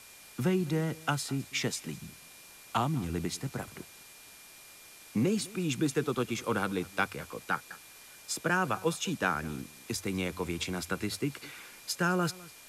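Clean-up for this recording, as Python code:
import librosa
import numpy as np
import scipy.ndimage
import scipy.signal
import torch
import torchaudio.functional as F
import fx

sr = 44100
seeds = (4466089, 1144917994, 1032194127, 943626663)

y = fx.notch(x, sr, hz=2400.0, q=30.0)
y = fx.noise_reduce(y, sr, print_start_s=4.03, print_end_s=4.53, reduce_db=25.0)
y = fx.fix_echo_inverse(y, sr, delay_ms=205, level_db=-21.5)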